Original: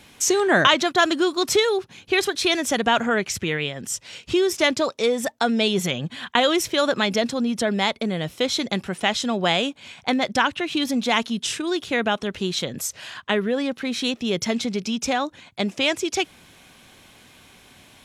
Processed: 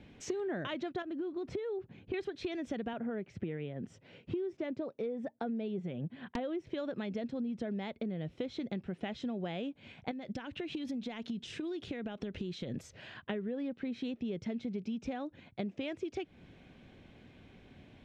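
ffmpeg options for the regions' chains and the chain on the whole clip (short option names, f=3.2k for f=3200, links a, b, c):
-filter_complex "[0:a]asettb=1/sr,asplit=3[a][b][c];[a]atrim=end=1.024[d];[b]atrim=start=1.02:end=2.14,asetpts=PTS-STARTPTS,afade=t=in:d=0.004:c=qsin,afade=t=out:st=1.116:d=0.004:c=qsin,highshelf=f=2.8k:g=-12,acompressor=threshold=-27dB:ratio=2.5:attack=3.2:release=140:knee=1:detection=peak[e];[c]atrim=start=2.136[f];[d][e]acrossfade=d=0.004:c1=hsin:c2=qsin[g];[g][f]acrossfade=d=0.004:c1=qsin:c2=hsin,asettb=1/sr,asplit=3[h][i][j];[h]atrim=end=2.934[k];[i]atrim=start=2.93:end=6.67,asetpts=PTS-STARTPTS,afade=t=in:d=0.004:c=qsin,afade=t=out:st=3.736:d=0.004:c=qsin,highpass=120,highshelf=f=2.4k:g=-12,aeval=exprs='(mod(2.51*val(0)+1,2)-1)/2.51':c=same[l];[j]atrim=start=6.666[m];[k][l]acrossfade=d=0.004:c1=hsin:c2=qsin[n];[n][m]acrossfade=d=0.004:c1=qsin:c2=hsin,asettb=1/sr,asplit=3[o][p][q];[o]atrim=end=10.114[r];[p]atrim=start=10.11:end=12.83,asetpts=PTS-STARTPTS,afade=t=in:d=0.004:c=qsin,afade=t=out:st=2.716:d=0.004:c=qsin,acompressor=threshold=-28dB:ratio=12:attack=3.2:release=140:knee=1:detection=peak,highshelf=f=3.8k:g=8.5[s];[q]atrim=start=12.826[t];[r][s]acrossfade=d=0.004:c1=hsin:c2=qsin[u];[u][t]acrossfade=d=0.004:c1=qsin:c2=hsin,lowpass=1.6k,equalizer=f=1.1k:w=0.94:g=-14,acompressor=threshold=-35dB:ratio=6"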